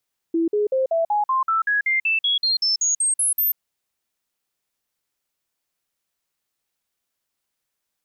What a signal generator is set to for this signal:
stepped sweep 331 Hz up, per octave 3, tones 17, 0.14 s, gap 0.05 s −17 dBFS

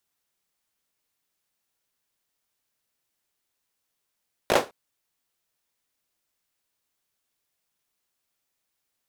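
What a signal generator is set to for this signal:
synth clap length 0.21 s, apart 18 ms, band 510 Hz, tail 0.23 s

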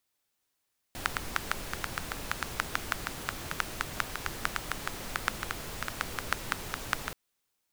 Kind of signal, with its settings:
rain-like ticks over hiss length 6.18 s, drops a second 6.2, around 1,400 Hz, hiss −1 dB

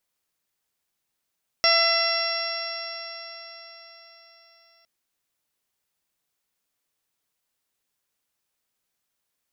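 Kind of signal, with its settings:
stiff-string partials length 3.21 s, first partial 669 Hz, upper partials −2/−1/−4/−8.5/−8/−3.5/5 dB, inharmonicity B 0.001, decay 4.49 s, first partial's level −23 dB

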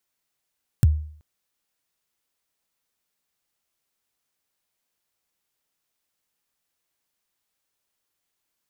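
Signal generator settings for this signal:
synth kick length 0.38 s, from 150 Hz, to 76 Hz, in 26 ms, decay 0.54 s, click on, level −9 dB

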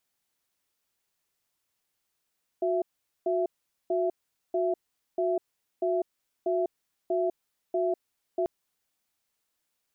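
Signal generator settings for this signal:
tone pair in a cadence 365 Hz, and 667 Hz, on 0.20 s, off 0.44 s, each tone −26.5 dBFS 5.84 s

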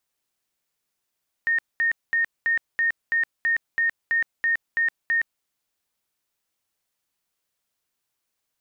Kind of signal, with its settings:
tone bursts 1,840 Hz, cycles 213, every 0.33 s, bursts 12, −18.5 dBFS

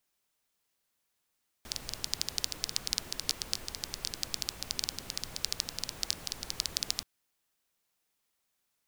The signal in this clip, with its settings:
rain-like ticks over hiss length 5.38 s, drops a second 12, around 4,800 Hz, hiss −8.5 dB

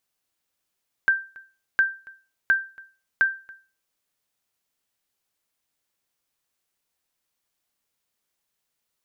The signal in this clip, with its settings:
ping with an echo 1,570 Hz, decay 0.34 s, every 0.71 s, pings 4, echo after 0.28 s, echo −24 dB −11.5 dBFS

